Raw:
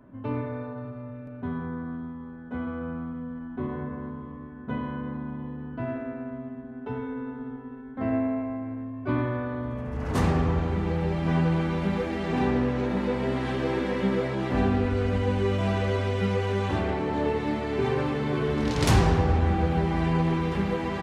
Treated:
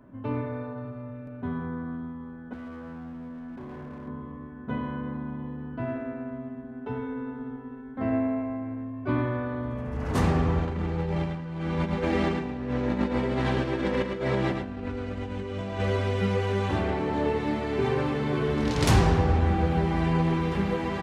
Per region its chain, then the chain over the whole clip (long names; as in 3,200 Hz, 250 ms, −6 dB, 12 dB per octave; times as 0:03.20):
0:02.53–0:04.08: downward compressor 4 to 1, threshold −34 dBFS + hard clipping −36.5 dBFS
0:10.65–0:15.80: low-pass filter 9,500 Hz + compressor whose output falls as the input rises −29 dBFS, ratio −0.5 + single-tap delay 109 ms −6 dB
whole clip: no processing